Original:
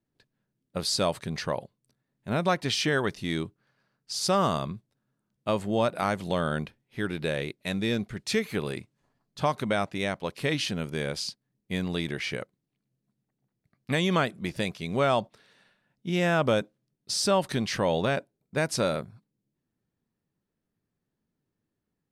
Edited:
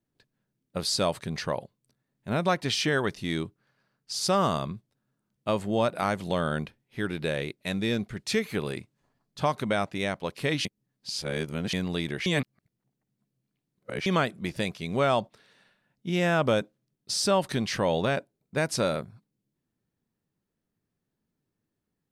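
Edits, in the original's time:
10.65–11.73 s: reverse
12.26–14.06 s: reverse

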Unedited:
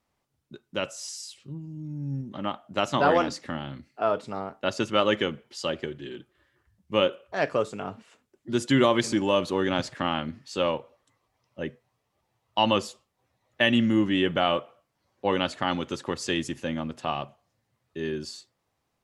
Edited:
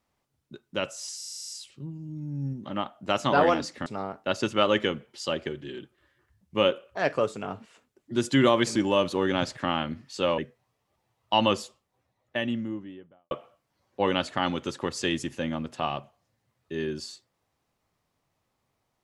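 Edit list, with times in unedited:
1.17 s: stutter 0.04 s, 9 plays
3.54–4.23 s: delete
10.75–11.63 s: delete
12.84–14.56 s: studio fade out

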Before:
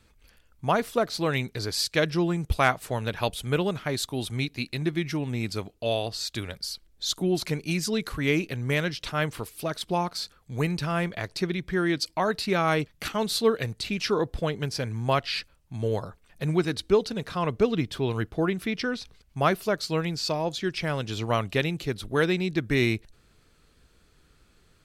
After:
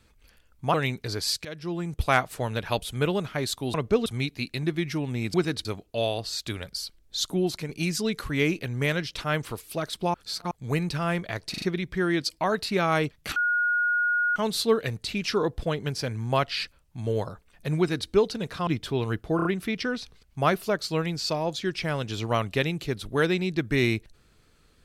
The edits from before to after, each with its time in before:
0.74–1.25 s: delete
1.96–2.62 s: fade in, from -19 dB
7.29–7.57 s: fade out, to -7 dB
10.02–10.39 s: reverse
11.38 s: stutter 0.04 s, 4 plays
13.12 s: add tone 1.44 kHz -21 dBFS 1.00 s
16.54–16.85 s: copy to 5.53 s
17.43–17.75 s: move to 4.25 s
18.44 s: stutter 0.03 s, 4 plays

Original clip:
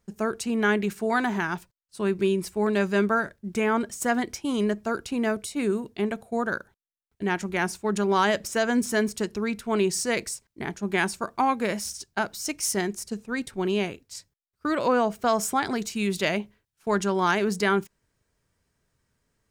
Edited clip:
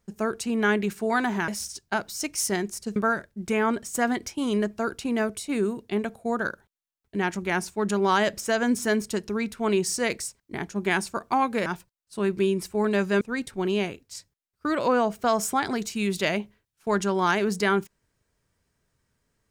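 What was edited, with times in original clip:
1.48–3.03 s: swap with 11.73–13.21 s

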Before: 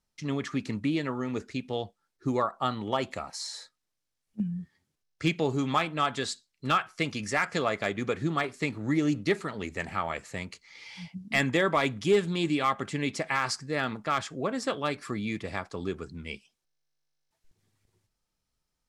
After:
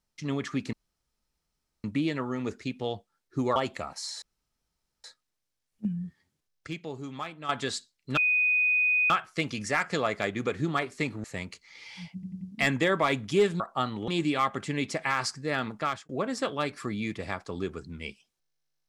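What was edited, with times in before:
0.73 s: insert room tone 1.11 s
2.45–2.93 s: move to 12.33 s
3.59 s: insert room tone 0.82 s
5.22–6.04 s: gain -10.5 dB
6.72 s: add tone 2.49 kHz -21 dBFS 0.93 s
8.86–10.24 s: delete
11.14 s: stutter 0.09 s, 4 plays
14.08–14.34 s: fade out

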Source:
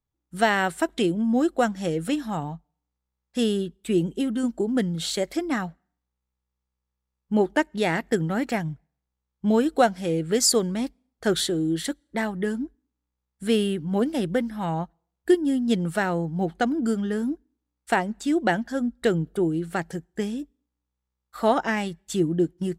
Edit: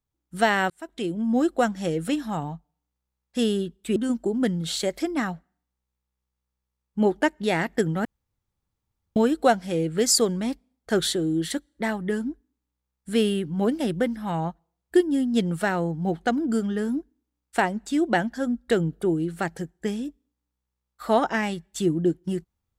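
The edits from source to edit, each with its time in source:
0.70–1.37 s: fade in
3.96–4.30 s: delete
8.39–9.50 s: room tone

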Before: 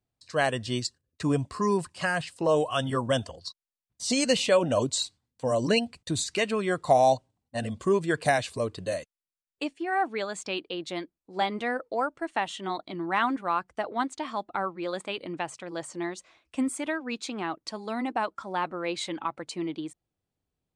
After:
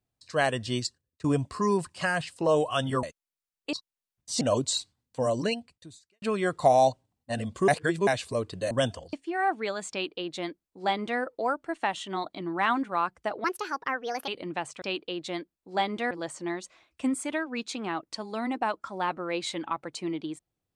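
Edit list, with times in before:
0.77–1.24 s: fade out equal-power, to -20 dB
3.03–3.45 s: swap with 8.96–9.66 s
4.13–4.66 s: delete
5.50–6.47 s: fade out quadratic
7.93–8.32 s: reverse
10.44–11.73 s: copy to 15.65 s
13.97–15.11 s: speed 136%

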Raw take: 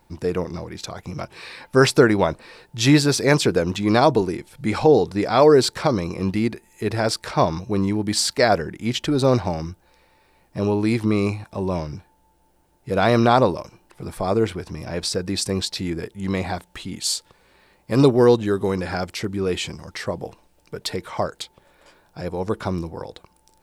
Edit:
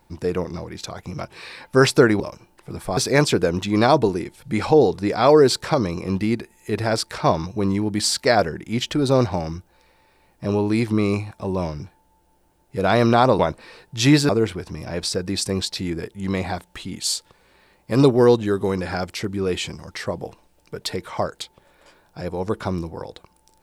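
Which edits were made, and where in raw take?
2.20–3.10 s: swap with 13.52–14.29 s

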